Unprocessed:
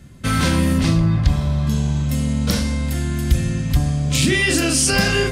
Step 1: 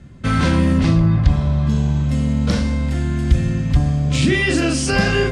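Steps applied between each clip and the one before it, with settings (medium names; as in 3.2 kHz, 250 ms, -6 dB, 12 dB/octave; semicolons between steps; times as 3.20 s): low-pass 9.2 kHz 24 dB/octave; treble shelf 3.7 kHz -11 dB; trim +2 dB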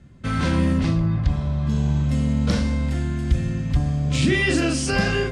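level rider; trim -7 dB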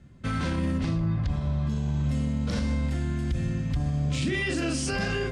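peak limiter -16 dBFS, peak gain reduction 8 dB; trim -3.5 dB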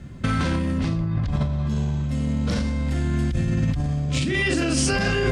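compressor with a negative ratio -31 dBFS, ratio -1; trim +8.5 dB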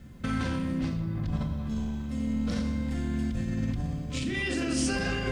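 bit crusher 10-bit; reverberation RT60 1.5 s, pre-delay 4 ms, DRR 6 dB; trim -8.5 dB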